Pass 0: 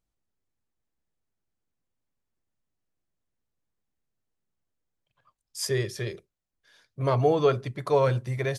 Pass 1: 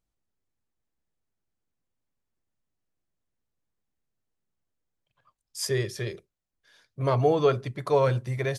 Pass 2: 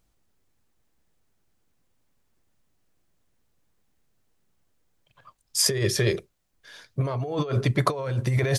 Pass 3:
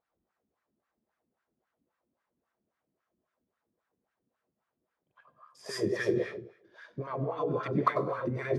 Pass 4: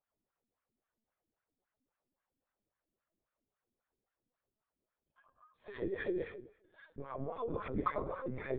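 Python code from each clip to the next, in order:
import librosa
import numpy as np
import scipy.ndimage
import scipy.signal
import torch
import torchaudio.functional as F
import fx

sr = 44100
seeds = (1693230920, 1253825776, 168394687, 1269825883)

y1 = x
y2 = fx.over_compress(y1, sr, threshold_db=-32.0, ratio=-1.0)
y2 = y2 * 10.0 ** (7.0 / 20.0)
y3 = fx.rev_plate(y2, sr, seeds[0], rt60_s=0.7, hf_ratio=0.9, predelay_ms=85, drr_db=-2.0)
y3 = fx.wah_lfo(y3, sr, hz=3.7, low_hz=240.0, high_hz=1500.0, q=2.3)
y4 = fx.lpc_vocoder(y3, sr, seeds[1], excitation='pitch_kept', order=16)
y4 = y4 * 10.0 ** (-7.5 / 20.0)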